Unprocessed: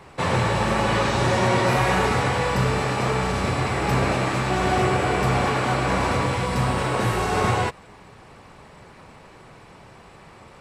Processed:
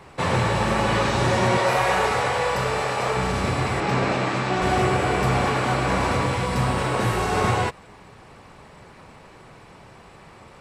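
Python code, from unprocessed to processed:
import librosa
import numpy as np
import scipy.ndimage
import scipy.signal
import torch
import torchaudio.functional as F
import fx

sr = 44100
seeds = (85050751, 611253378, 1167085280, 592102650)

y = fx.low_shelf_res(x, sr, hz=380.0, db=-7.0, q=1.5, at=(1.57, 3.17))
y = fx.bandpass_edges(y, sr, low_hz=120.0, high_hz=6800.0, at=(3.8, 4.62))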